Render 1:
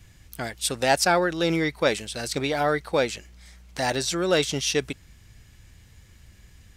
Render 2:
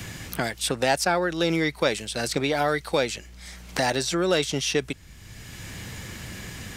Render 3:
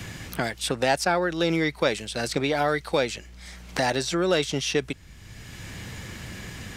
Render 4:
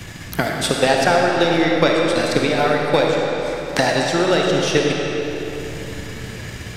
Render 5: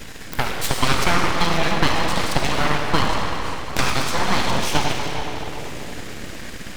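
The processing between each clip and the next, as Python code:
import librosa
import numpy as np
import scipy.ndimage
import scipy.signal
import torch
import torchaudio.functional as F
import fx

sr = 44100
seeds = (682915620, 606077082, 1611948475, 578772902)

y1 = fx.band_squash(x, sr, depth_pct=70)
y2 = fx.high_shelf(y1, sr, hz=7100.0, db=-6.0)
y3 = fx.transient(y2, sr, attack_db=6, sustain_db=-7)
y3 = fx.rev_freeverb(y3, sr, rt60_s=3.9, hf_ratio=0.75, predelay_ms=10, drr_db=-1.5)
y3 = y3 * 10.0 ** (2.5 / 20.0)
y4 = np.abs(y3)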